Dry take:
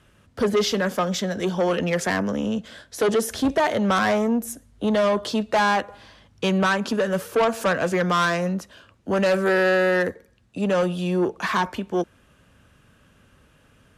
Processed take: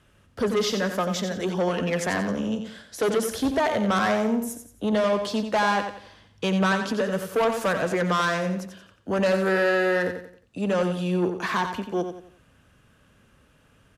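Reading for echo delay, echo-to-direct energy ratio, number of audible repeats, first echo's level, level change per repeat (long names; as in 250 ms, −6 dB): 89 ms, −7.5 dB, 4, −8.0 dB, −9.0 dB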